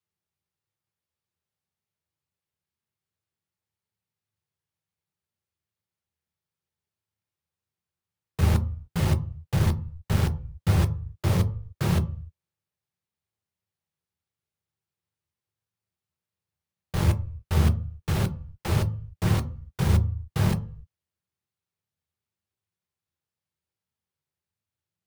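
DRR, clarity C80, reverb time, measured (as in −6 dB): 6.5 dB, 21.5 dB, 0.45 s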